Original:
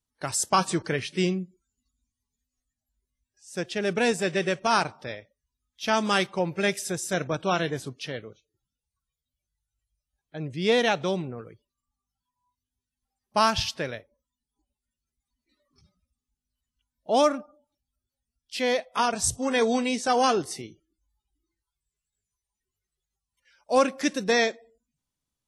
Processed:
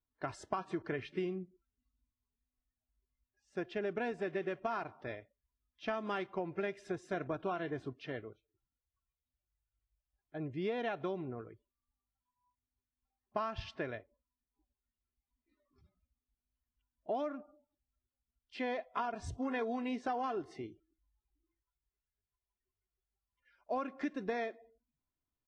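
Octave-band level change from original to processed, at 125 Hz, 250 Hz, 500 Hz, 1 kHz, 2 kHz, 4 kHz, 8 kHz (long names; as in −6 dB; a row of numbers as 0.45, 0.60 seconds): −12.5 dB, −11.0 dB, −12.0 dB, −13.5 dB, −14.5 dB, −22.0 dB, below −30 dB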